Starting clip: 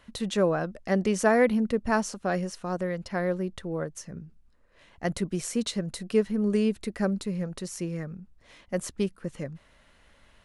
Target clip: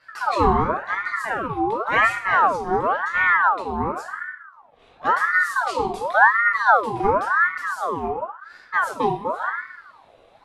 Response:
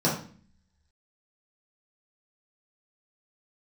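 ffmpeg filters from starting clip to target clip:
-filter_complex "[0:a]asettb=1/sr,asplit=3[link_01][link_02][link_03];[link_01]atrim=end=0.814[link_04];[link_02]atrim=start=0.81:end=1.83,asetpts=PTS-STARTPTS,afade=type=in:duration=0.004:curve=qsin,afade=type=out:start_time=1.016:duration=0.004:curve=qsin,acompressor=threshold=-30dB:ratio=6[link_05];[link_03]atrim=start=1.826[link_06];[link_04][link_05]acrossfade=duration=0.004:curve1=hsin:curve2=qsin[link_07];[link_07][link_06]acrossfade=duration=0.004:curve1=qsin:curve2=hsin[link_08];[1:a]atrim=start_sample=2205,asetrate=25578,aresample=44100[link_09];[link_08][link_09]afir=irnorm=-1:irlink=0,aeval=exprs='val(0)*sin(2*PI*1100*n/s+1100*0.5/0.93*sin(2*PI*0.93*n/s))':channel_layout=same,volume=-11dB"

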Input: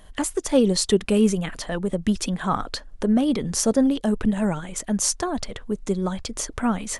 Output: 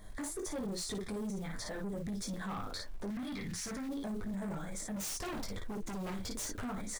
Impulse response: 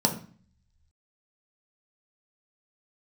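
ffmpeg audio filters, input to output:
-filter_complex "[0:a]asuperstop=centerf=2800:order=8:qfactor=2.9,bandreject=frequency=337.2:width_type=h:width=4,bandreject=frequency=674.4:width_type=h:width=4,bandreject=frequency=1011.6:width_type=h:width=4,flanger=delay=9.1:depth=2.8:regen=-28:speed=1.7:shape=triangular,acompressor=threshold=-24dB:ratio=4,acrusher=bits=6:mode=log:mix=0:aa=0.000001,aecho=1:1:20|56:0.596|0.531,asoftclip=type=tanh:threshold=-26dB,asettb=1/sr,asplit=3[link_01][link_02][link_03];[link_01]atrim=end=3.104[link_04];[link_02]atrim=start=3.1:end=3.89,asetpts=PTS-STARTPTS,afade=type=in:duration=0.004:curve=qsin,afade=type=out:start_time=0.786:duration=0.004:curve=qsin,equalizer=frequency=125:width_type=o:width=1:gain=4,equalizer=frequency=500:width_type=o:width=1:gain=-10,equalizer=frequency=2000:width_type=o:width=1:gain=11,equalizer=frequency=4000:width_type=o:width=1:gain=3[link_05];[link_03]atrim=start=3.886[link_06];[link_04][link_05]acrossfade=duration=0.004:curve1=hsin:curve2=qsin[link_07];[link_07][link_06]acrossfade=duration=0.004:curve1=qsin:curve2=hsin,asettb=1/sr,asplit=3[link_08][link_09][link_10];[link_08]atrim=end=4.964[link_11];[link_09]atrim=start=4.96:end=6.64,asetpts=PTS-STARTPTS,afade=type=in:duration=0.004:curve=qsin,afade=type=out:start_time=1.676:duration=0.004:curve=qsin,aeval=exprs='0.0282*(abs(mod(val(0)/0.0282+3,4)-2)-1)':channel_layout=same[link_12];[link_10]atrim=start=6.636[link_13];[link_11][link_12]acrossfade=duration=0.004:curve1=hsin:curve2=qsin[link_14];[link_14][link_13]acrossfade=duration=0.004:curve1=qsin:curve2=hsin,lowshelf=frequency=190:gain=4.5,alimiter=level_in=8dB:limit=-24dB:level=0:latency=1:release=31,volume=-8dB,volume=-2dB"

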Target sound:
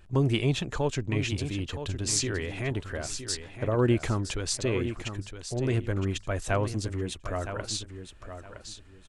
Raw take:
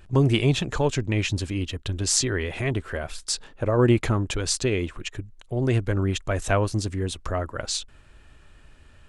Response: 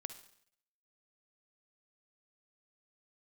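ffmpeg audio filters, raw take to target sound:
-af "aecho=1:1:965|1930|2895:0.316|0.0727|0.0167,volume=-5dB"

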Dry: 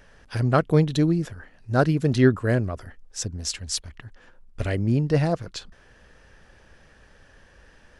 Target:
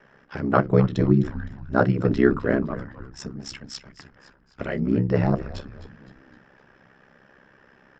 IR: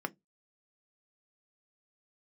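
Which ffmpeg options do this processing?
-filter_complex "[0:a]aresample=16000,aresample=44100[link_01];[1:a]atrim=start_sample=2205[link_02];[link_01][link_02]afir=irnorm=-1:irlink=0,aeval=exprs='val(0)*sin(2*PI*33*n/s)':channel_layout=same,asplit=5[link_03][link_04][link_05][link_06][link_07];[link_04]adelay=257,afreqshift=-110,volume=-14.5dB[link_08];[link_05]adelay=514,afreqshift=-220,volume=-21.1dB[link_09];[link_06]adelay=771,afreqshift=-330,volume=-27.6dB[link_10];[link_07]adelay=1028,afreqshift=-440,volume=-34.2dB[link_11];[link_03][link_08][link_09][link_10][link_11]amix=inputs=5:normalize=0"

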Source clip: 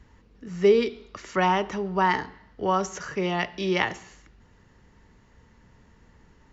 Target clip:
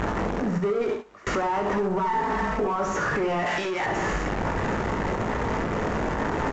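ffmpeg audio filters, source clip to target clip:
ffmpeg -i in.wav -filter_complex "[0:a]aeval=exprs='val(0)+0.5*0.0376*sgn(val(0))':channel_layout=same,asettb=1/sr,asplit=3[link_01][link_02][link_03];[link_01]atrim=end=0.584[link_04];[link_02]atrim=start=0.58:end=1.27,asetpts=PTS-STARTPTS,afade=type=in:duration=0.004:curve=qsin,afade=type=out:start_time=0.686:duration=0.004:curve=qsin,agate=range=-38dB:threshold=-26dB:ratio=16:detection=peak[link_05];[link_03]atrim=start=1.266[link_06];[link_04][link_05]acrossfade=duration=0.004:curve1=hsin:curve2=qsin[link_07];[link_07][link_06]acrossfade=duration=0.004:curve1=qsin:curve2=hsin,acompressor=threshold=-33dB:ratio=2,asplit=2[link_08][link_09];[link_09]highpass=frequency=720:poles=1,volume=27dB,asoftclip=type=tanh:threshold=-17dB[link_10];[link_08][link_10]amix=inputs=2:normalize=0,lowpass=frequency=2100:poles=1,volume=-6dB,equalizer=frequency=4100:width_type=o:width=2:gain=-14.5,aecho=1:1:19|69:0.422|0.473,acontrast=71,asettb=1/sr,asplit=3[link_11][link_12][link_13];[link_11]atrim=end=1.984[link_14];[link_12]atrim=start=1.98:end=2.76,asetpts=PTS-STARTPTS,afade=type=in:duration=0.004:curve=qsin,afade=type=out:start_time=0.776:duration=0.004:curve=qsin,aecho=1:1:4.5:0.86,atrim=end_sample=34398[link_15];[link_13]atrim=start=2.756[link_16];[link_14][link_15]acrossfade=duration=0.004:curve1=hsin:curve2=qsin[link_17];[link_17][link_16]acrossfade=duration=0.004:curve1=qsin:curve2=hsin,alimiter=limit=-19.5dB:level=0:latency=1:release=277,asettb=1/sr,asplit=3[link_18][link_19][link_20];[link_18]atrim=end=3.464[link_21];[link_19]atrim=start=3.46:end=3.86,asetpts=PTS-STARTPTS,afade=type=in:duration=0.004:curve=qsin,afade=type=out:start_time=0.396:duration=0.004:curve=qsin,tiltshelf=frequency=970:gain=-7[link_22];[link_20]atrim=start=3.856[link_23];[link_21][link_22]acrossfade=duration=0.004:curve1=hsin:curve2=qsin[link_24];[link_24][link_23]acrossfade=duration=0.004:curve1=qsin:curve2=hsin,volume=1.5dB" -ar 16000 -c:a pcm_alaw out.wav

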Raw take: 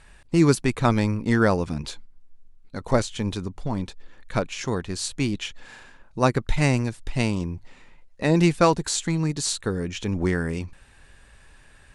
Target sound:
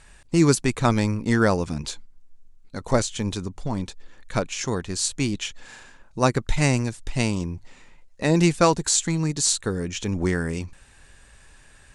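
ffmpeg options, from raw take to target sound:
ffmpeg -i in.wav -af "equalizer=frequency=7100:width_type=o:width=1:gain=7" out.wav

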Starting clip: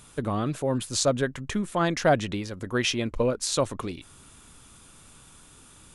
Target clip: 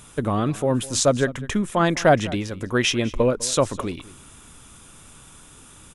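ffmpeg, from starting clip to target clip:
ffmpeg -i in.wav -af "equalizer=frequency=4400:width_type=o:width=0.22:gain=-6.5,aecho=1:1:203:0.106,volume=5dB" out.wav

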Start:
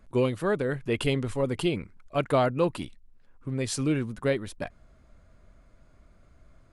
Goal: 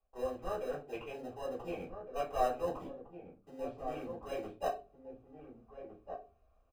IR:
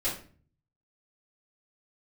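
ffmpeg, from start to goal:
-filter_complex "[0:a]acrossover=split=3000[link_01][link_02];[link_02]acompressor=threshold=-48dB:ratio=4:attack=1:release=60[link_03];[link_01][link_03]amix=inputs=2:normalize=0,afwtdn=0.0126,areverse,acompressor=threshold=-37dB:ratio=16,areverse,asplit=3[link_04][link_05][link_06];[link_04]bandpass=frequency=730:width_type=q:width=8,volume=0dB[link_07];[link_05]bandpass=frequency=1090:width_type=q:width=8,volume=-6dB[link_08];[link_06]bandpass=frequency=2440:width_type=q:width=8,volume=-9dB[link_09];[link_07][link_08][link_09]amix=inputs=3:normalize=0,asplit=2[link_10][link_11];[link_11]acrusher=samples=39:mix=1:aa=0.000001,volume=-10dB[link_12];[link_10][link_12]amix=inputs=2:normalize=0,asplit=2[link_13][link_14];[link_14]adelay=1458,volume=-8dB,highshelf=frequency=4000:gain=-32.8[link_15];[link_13][link_15]amix=inputs=2:normalize=0[link_16];[1:a]atrim=start_sample=2205,asetrate=66150,aresample=44100[link_17];[link_16][link_17]afir=irnorm=-1:irlink=0,volume=11.5dB"

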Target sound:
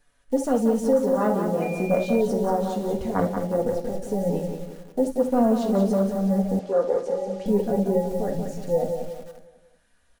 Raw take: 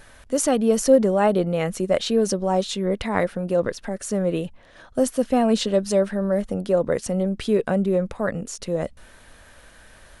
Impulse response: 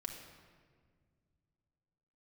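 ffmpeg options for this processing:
-filter_complex "[0:a]flanger=delay=6.9:depth=9.6:regen=33:speed=0.24:shape=sinusoidal,asettb=1/sr,asplit=3[link_01][link_02][link_03];[link_01]atrim=end=5.034[link_04];[link_02]atrim=start=5.03:end=5.89,asetpts=PTS-STARTPTS,afade=type=in:duration=0.004:curve=qsin,afade=type=out:start_time=0.856:duration=0.004:curve=qsin,bandreject=frequency=50:width_type=h:width=6,bandreject=frequency=100:width_type=h:width=6,bandreject=frequency=150:width_type=h:width=6,bandreject=frequency=200:width_type=h:width=6,bandreject=frequency=250:width_type=h:width=6,bandreject=frequency=300:width_type=h:width=6,bandreject=frequency=350:width_type=h:width=6,bandreject=frequency=400:width_type=h:width=6,bandreject=frequency=450:width_type=h:width=6[link_05];[link_03]atrim=start=5.886[link_06];[link_04][link_05]acrossfade=duration=0.004:curve1=hsin:curve2=qsin[link_07];[link_07][link_06]acrossfade=duration=0.004:curve1=qsin:curve2=hsin,afwtdn=0.0501,highshelf=frequency=6400:gain=-5.5,aecho=1:1:182|364|546|728|910:0.473|0.203|0.0875|0.0376|0.0162,asplit=2[link_08][link_09];[link_09]acrusher=bits=6:mix=0:aa=0.000001,volume=-11dB[link_10];[link_08][link_10]amix=inputs=2:normalize=0[link_11];[1:a]atrim=start_sample=2205,atrim=end_sample=3528[link_12];[link_11][link_12]afir=irnorm=-1:irlink=0,asettb=1/sr,asplit=3[link_13][link_14][link_15];[link_13]atrim=end=1.624[link_16];[link_14]atrim=start=1.62:end=2.21,asetpts=PTS-STARTPTS,afade=type=in:duration=0.004:curve=qsin,afade=type=out:start_time=0.586:duration=0.004:curve=qsin,aeval=exprs='val(0)+0.00891*sin(2*PI*2400*n/s)':channel_layout=same[link_17];[link_15]atrim=start=2.206[link_18];[link_16][link_17]acrossfade=duration=0.004:curve1=hsin:curve2=qsin[link_19];[link_19][link_18]acrossfade=duration=0.004:curve1=qsin:curve2=hsin,asettb=1/sr,asplit=3[link_20][link_21][link_22];[link_20]atrim=end=6.594[link_23];[link_21]atrim=start=6.59:end=7.46,asetpts=PTS-STARTPTS,afade=type=in:duration=0.004:curve=qsin,afade=type=out:start_time=0.866:duration=0.004:curve=qsin,acrossover=split=310 7800:gain=0.126 1 0.0891[link_24][link_25][link_26];[link_24][link_25][link_26]amix=inputs=3:normalize=0[link_27];[link_22]atrim=start=7.456[link_28];[link_23][link_27]acrossfade=duration=0.004:curve1=hsin:curve2=qsin[link_29];[link_29][link_28]acrossfade=duration=0.004:curve1=qsin:curve2=hsin,acrossover=split=750|5100[link_30][link_31][link_32];[link_30]alimiter=limit=-16.5dB:level=0:latency=1:release=346[link_33];[link_32]acontrast=83[link_34];[link_33][link_31][link_34]amix=inputs=3:normalize=0,volume=3.5dB"

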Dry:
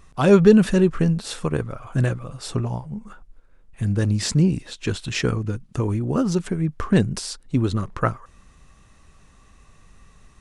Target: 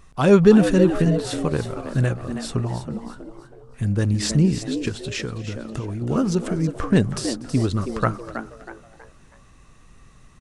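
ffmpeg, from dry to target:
ffmpeg -i in.wav -filter_complex "[0:a]asplit=2[link_01][link_02];[link_02]asplit=4[link_03][link_04][link_05][link_06];[link_03]adelay=322,afreqshift=110,volume=-10dB[link_07];[link_04]adelay=644,afreqshift=220,volume=-18.6dB[link_08];[link_05]adelay=966,afreqshift=330,volume=-27.3dB[link_09];[link_06]adelay=1288,afreqshift=440,volume=-35.9dB[link_10];[link_07][link_08][link_09][link_10]amix=inputs=4:normalize=0[link_11];[link_01][link_11]amix=inputs=2:normalize=0,asettb=1/sr,asplit=3[link_12][link_13][link_14];[link_12]atrim=end=4.884[link_15];[link_13]atrim=start=4.88:end=6.02,asetpts=PTS-STARTPTS,afade=type=in:duration=0.004:curve=qsin,afade=type=out:start_time=1.136:duration=0.004:curve=qsin,acompressor=threshold=-25dB:ratio=10[link_16];[link_14]atrim=start=6.016[link_17];[link_15][link_16]acrossfade=duration=0.004:curve1=hsin:curve2=qsin[link_18];[link_18][link_17]acrossfade=duration=0.004:curve1=qsin:curve2=hsin,asplit=2[link_19][link_20];[link_20]asplit=3[link_21][link_22][link_23];[link_21]adelay=241,afreqshift=-35,volume=-22dB[link_24];[link_22]adelay=482,afreqshift=-70,volume=-28.9dB[link_25];[link_23]adelay=723,afreqshift=-105,volume=-35.9dB[link_26];[link_24][link_25][link_26]amix=inputs=3:normalize=0[link_27];[link_19][link_27]amix=inputs=2:normalize=0" out.wav

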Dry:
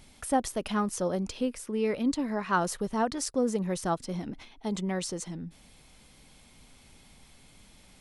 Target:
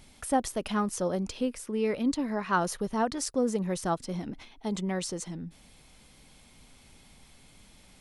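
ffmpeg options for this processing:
ffmpeg -i in.wav -filter_complex "[0:a]asettb=1/sr,asplit=3[link_01][link_02][link_03];[link_01]atrim=end=2.144[link_04];[link_02]atrim=start=2.14:end=3.05,asetpts=PTS-STARTPTS,afade=type=in:duration=0.004:curve=qsin,afade=type=out:start_time=0.906:duration=0.004:curve=qsin,bandreject=frequency=7800:width=8.2[link_05];[link_03]atrim=start=3.046[link_06];[link_04][link_05]acrossfade=duration=0.004:curve1=hsin:curve2=qsin[link_07];[link_07][link_06]acrossfade=duration=0.004:curve1=qsin:curve2=hsin" out.wav

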